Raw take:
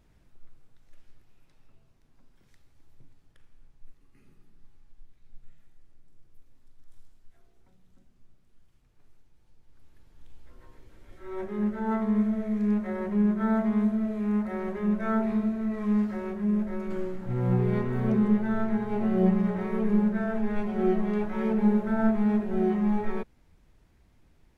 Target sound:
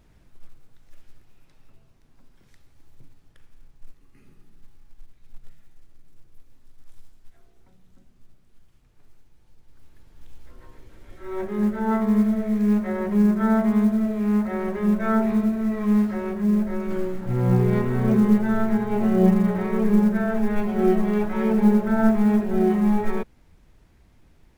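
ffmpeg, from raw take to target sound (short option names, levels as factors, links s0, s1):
-af "acrusher=bits=9:mode=log:mix=0:aa=0.000001,volume=1.88"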